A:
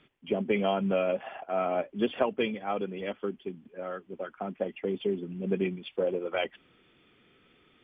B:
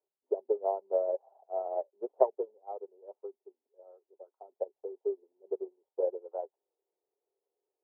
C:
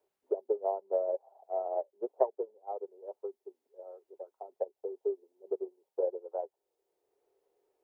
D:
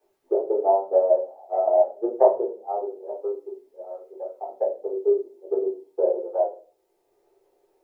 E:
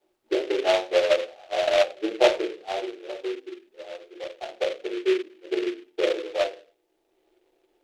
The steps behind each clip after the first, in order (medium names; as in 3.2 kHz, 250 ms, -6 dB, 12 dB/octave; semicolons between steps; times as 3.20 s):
elliptic band-pass 390–910 Hz, stop band 50 dB; upward expansion 2.5:1, over -38 dBFS; trim +5 dB
three bands compressed up and down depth 40%
simulated room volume 200 m³, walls furnished, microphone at 3.8 m; trim +3 dB
frequency shift -29 Hz; delay time shaken by noise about 2.3 kHz, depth 0.083 ms; trim -2 dB